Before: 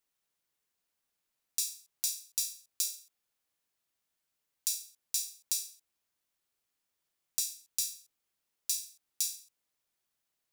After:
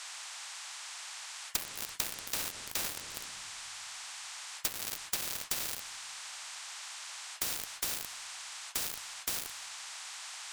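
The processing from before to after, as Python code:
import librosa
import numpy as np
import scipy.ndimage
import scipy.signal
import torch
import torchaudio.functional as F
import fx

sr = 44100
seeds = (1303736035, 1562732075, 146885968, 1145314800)

p1 = fx.law_mismatch(x, sr, coded='A')
p2 = fx.doppler_pass(p1, sr, speed_mps=7, closest_m=3.9, pass_at_s=2.78)
p3 = fx.room_shoebox(p2, sr, seeds[0], volume_m3=1400.0, walls='mixed', distance_m=2.5)
p4 = fx.env_lowpass_down(p3, sr, base_hz=1700.0, full_db=-38.0)
p5 = fx.fuzz(p4, sr, gain_db=50.0, gate_db=-56.0)
p6 = p4 + F.gain(torch.from_numpy(p5), -6.5).numpy()
p7 = fx.dmg_noise_band(p6, sr, seeds[1], low_hz=870.0, high_hz=7900.0, level_db=-62.0)
y = fx.spectral_comp(p7, sr, ratio=4.0)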